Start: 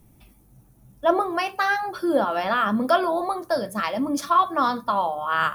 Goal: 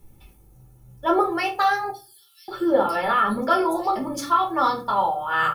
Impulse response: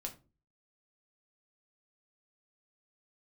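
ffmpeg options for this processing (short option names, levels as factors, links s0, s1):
-filter_complex "[0:a]aecho=1:1:2.3:0.54,asettb=1/sr,asplit=3[s0][s1][s2];[s0]atrim=end=1.904[s3];[s1]atrim=start=1.9:end=3.96,asetpts=PTS-STARTPTS,afade=t=in:d=0.004:c=qsin,afade=t=out:st=2.056:d=0.004:c=qsin,acrossover=split=4800[s4][s5];[s4]adelay=580[s6];[s6][s5]amix=inputs=2:normalize=0,atrim=end_sample=90846[s7];[s2]atrim=start=3.956[s8];[s3][s7]acrossfade=d=0.004:c1=hsin:c2=qsin[s9];[s9][s8]acrossfade=d=0.004:c1=qsin:c2=hsin[s10];[1:a]atrim=start_sample=2205[s11];[s10][s11]afir=irnorm=-1:irlink=0,volume=1.26"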